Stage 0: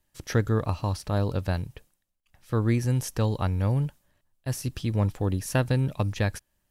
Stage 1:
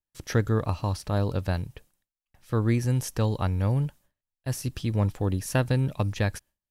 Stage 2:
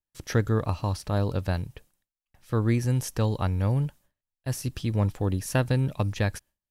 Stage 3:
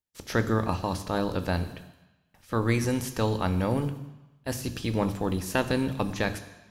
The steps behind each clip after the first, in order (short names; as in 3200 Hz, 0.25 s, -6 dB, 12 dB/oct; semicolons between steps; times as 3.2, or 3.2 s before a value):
gate with hold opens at -55 dBFS
nothing audible
spectral limiter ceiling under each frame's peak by 14 dB; on a send at -9 dB: reverb RT60 1.0 s, pre-delay 3 ms; on the sum: gain -2.5 dB